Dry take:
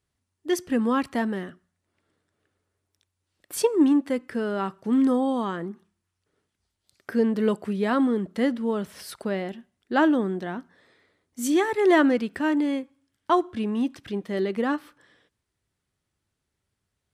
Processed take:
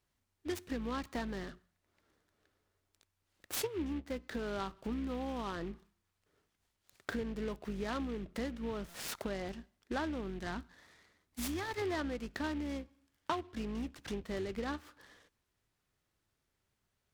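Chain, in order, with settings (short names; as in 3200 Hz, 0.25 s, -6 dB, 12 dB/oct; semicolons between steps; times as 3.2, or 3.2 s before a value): octaver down 2 oct, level -4 dB; 10.3–11.82 bell 500 Hz -7 dB 1.2 oct; compressor 6:1, threshold -33 dBFS, peak gain reduction 18 dB; low shelf 390 Hz -5 dB; stuck buffer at 8.89, samples 256, times 8; noise-modulated delay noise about 2100 Hz, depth 0.043 ms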